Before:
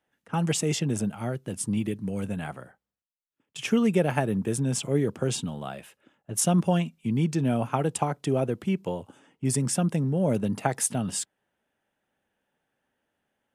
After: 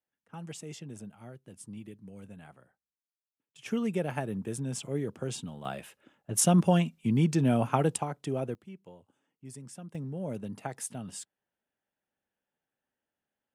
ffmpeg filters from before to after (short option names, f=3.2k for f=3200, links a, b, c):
-af "asetnsamples=n=441:p=0,asendcmd='3.66 volume volume -8dB;5.65 volume volume 0dB;7.96 volume volume -7dB;8.55 volume volume -20dB;9.95 volume volume -11.5dB',volume=-16.5dB"